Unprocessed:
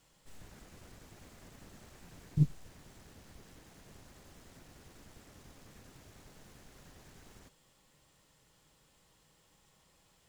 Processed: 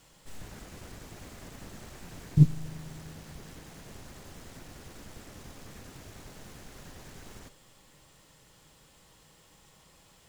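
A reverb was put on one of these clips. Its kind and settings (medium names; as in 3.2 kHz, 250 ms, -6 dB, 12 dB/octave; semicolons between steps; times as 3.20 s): spring tank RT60 3.1 s, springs 38 ms, DRR 16 dB; trim +8.5 dB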